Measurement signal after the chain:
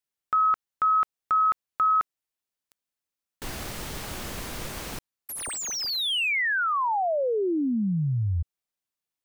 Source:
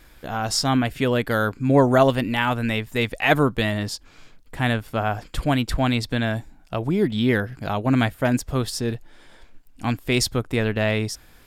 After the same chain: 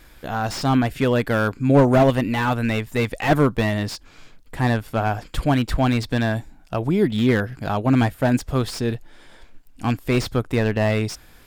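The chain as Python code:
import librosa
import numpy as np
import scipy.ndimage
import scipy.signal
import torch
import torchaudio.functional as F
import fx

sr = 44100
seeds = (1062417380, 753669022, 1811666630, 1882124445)

y = fx.slew_limit(x, sr, full_power_hz=140.0)
y = F.gain(torch.from_numpy(y), 2.0).numpy()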